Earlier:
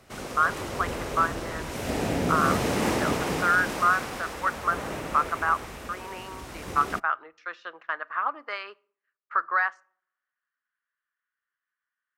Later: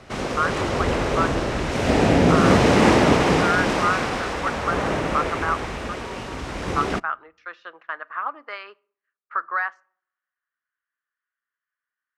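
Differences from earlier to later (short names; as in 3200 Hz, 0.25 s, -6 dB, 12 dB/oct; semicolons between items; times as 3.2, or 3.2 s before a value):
background +10.5 dB; master: add air absorption 79 m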